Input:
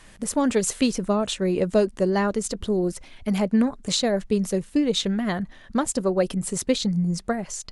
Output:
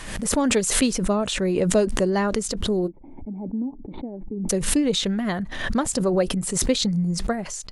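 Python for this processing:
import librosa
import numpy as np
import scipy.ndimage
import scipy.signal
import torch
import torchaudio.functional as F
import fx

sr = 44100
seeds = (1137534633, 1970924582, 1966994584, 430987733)

y = fx.formant_cascade(x, sr, vowel='u', at=(2.86, 4.49), fade=0.02)
y = fx.pre_swell(y, sr, db_per_s=51.0)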